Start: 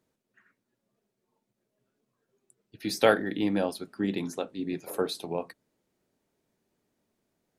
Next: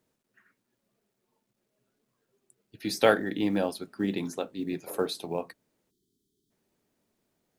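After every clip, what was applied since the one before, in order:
log-companded quantiser 8 bits
time-frequency box erased 0:05.90–0:06.51, 440–3,000 Hz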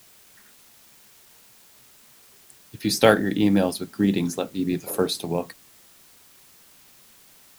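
bass and treble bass +8 dB, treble +6 dB
in parallel at −6 dB: bit-depth reduction 8 bits, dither triangular
on the sum: level +1 dB

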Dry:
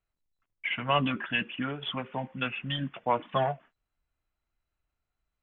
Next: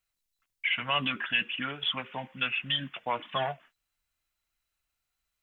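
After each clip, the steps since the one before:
tilt shelving filter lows −8.5 dB, about 1,500 Hz
in parallel at +2 dB: brickwall limiter −22.5 dBFS, peak gain reduction 10 dB
on the sum: level −5 dB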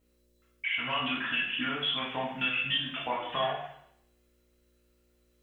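downward compressor, threshold −34 dBFS, peak gain reduction 11.5 dB
hum with harmonics 60 Hz, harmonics 10, −74 dBFS −4 dB per octave
convolution reverb RT60 0.70 s, pre-delay 3 ms, DRR −6 dB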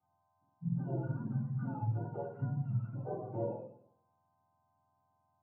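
frequency axis turned over on the octave scale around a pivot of 610 Hz
transistor ladder low-pass 1,000 Hz, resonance 60%
level +1.5 dB

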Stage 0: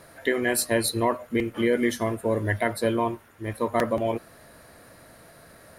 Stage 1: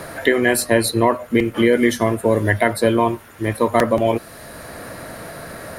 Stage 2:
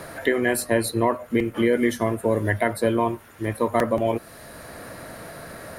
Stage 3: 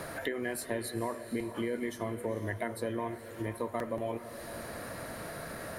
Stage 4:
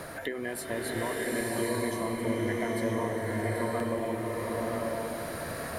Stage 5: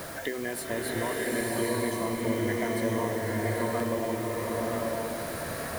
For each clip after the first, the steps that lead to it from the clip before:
multiband upward and downward compressor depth 40%; level +8 dB
dynamic equaliser 4,400 Hz, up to −4 dB, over −37 dBFS, Q 0.74; level −5 dB
downward compressor 2.5 to 1, threshold −34 dBFS, peak gain reduction 12.5 dB; feedback delay with all-pass diffusion 470 ms, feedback 41%, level −11 dB; level −2.5 dB
slow-attack reverb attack 960 ms, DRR −4 dB
bit-depth reduction 8 bits, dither triangular; level +1.5 dB

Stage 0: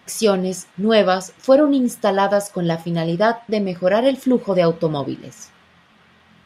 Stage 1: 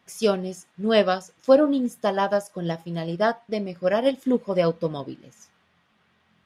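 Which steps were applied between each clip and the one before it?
expander for the loud parts 1.5 to 1, over −28 dBFS
level −2.5 dB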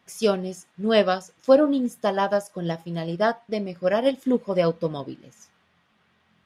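no processing that can be heard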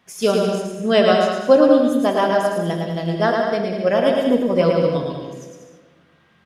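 bouncing-ball delay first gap 110 ms, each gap 0.75×, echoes 5
on a send at −7 dB: convolution reverb RT60 1.6 s, pre-delay 16 ms
on the sum: level +3 dB

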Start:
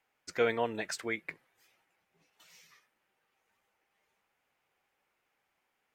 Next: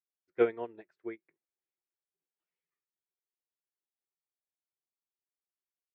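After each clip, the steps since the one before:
low-pass filter 2,200 Hz 12 dB per octave
parametric band 360 Hz +13 dB 0.5 octaves
expander for the loud parts 2.5 to 1, over −41 dBFS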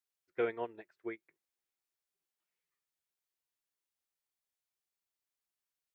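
brickwall limiter −23 dBFS, peak gain reduction 9 dB
parametric band 250 Hz −5.5 dB 2.8 octaves
level +3.5 dB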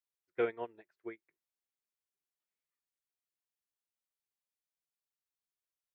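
expander for the loud parts 1.5 to 1, over −45 dBFS
level +1.5 dB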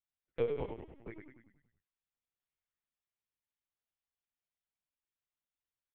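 flanger swept by the level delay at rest 7.2 ms, full sweep at −37.5 dBFS
echo with shifted repeats 96 ms, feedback 54%, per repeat −36 Hz, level −5 dB
linear-prediction vocoder at 8 kHz pitch kept

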